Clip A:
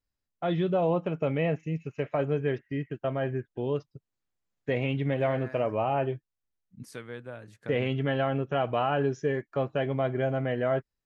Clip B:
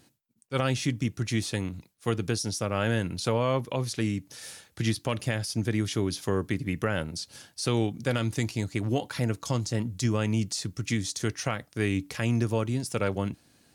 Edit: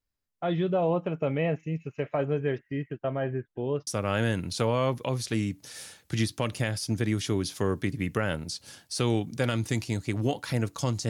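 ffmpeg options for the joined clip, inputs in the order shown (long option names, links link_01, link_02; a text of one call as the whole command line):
ffmpeg -i cue0.wav -i cue1.wav -filter_complex "[0:a]asettb=1/sr,asplit=3[link_01][link_02][link_03];[link_01]atrim=end=2.924[link_04];[link_02]atrim=start=2.92:end=3.87,asetpts=PTS-STARTPTS,afade=type=in:duration=0.004:curve=qsin,afade=type=out:start_time=0.946:duration=0.004:curve=qsin,lowpass=frequency=3700:poles=1[link_05];[link_03]atrim=start=3.866[link_06];[link_04][link_05]acrossfade=duration=0.004:curve1=hsin:curve2=qsin[link_07];[link_07][link_06]acrossfade=duration=0.004:curve1=qsin:curve2=hsin,apad=whole_dur=11.09,atrim=end=11.09,atrim=end=3.872[link_08];[1:a]atrim=start=2.538:end=9.76[link_09];[link_08][link_09]acrossfade=duration=0.004:curve1=hsin:curve2=hsin" out.wav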